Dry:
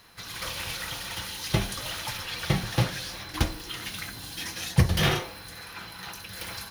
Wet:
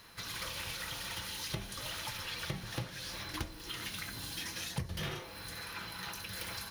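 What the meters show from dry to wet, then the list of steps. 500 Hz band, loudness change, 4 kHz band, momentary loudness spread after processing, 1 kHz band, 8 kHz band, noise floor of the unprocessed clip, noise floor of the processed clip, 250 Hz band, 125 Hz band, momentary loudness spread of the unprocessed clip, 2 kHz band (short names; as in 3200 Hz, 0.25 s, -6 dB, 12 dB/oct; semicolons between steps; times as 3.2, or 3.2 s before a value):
-12.0 dB, -9.5 dB, -7.5 dB, 3 LU, -9.5 dB, -6.5 dB, -44 dBFS, -48 dBFS, -13.0 dB, -15.0 dB, 14 LU, -8.0 dB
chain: notch 750 Hz, Q 12; compressor 4:1, threshold -37 dBFS, peak gain reduction 19 dB; gain -1 dB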